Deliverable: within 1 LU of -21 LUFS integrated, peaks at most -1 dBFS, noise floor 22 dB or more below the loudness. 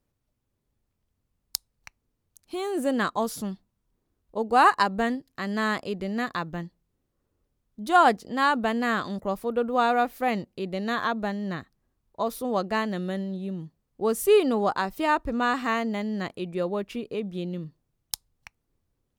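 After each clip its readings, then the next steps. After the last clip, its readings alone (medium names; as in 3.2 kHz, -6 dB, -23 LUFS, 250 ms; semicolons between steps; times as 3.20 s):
loudness -26.5 LUFS; peak level -3.5 dBFS; loudness target -21.0 LUFS
-> trim +5.5 dB; peak limiter -1 dBFS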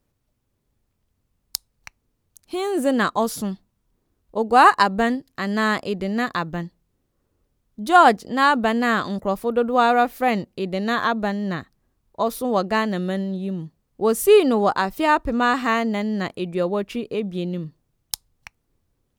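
loudness -21.0 LUFS; peak level -1.0 dBFS; noise floor -73 dBFS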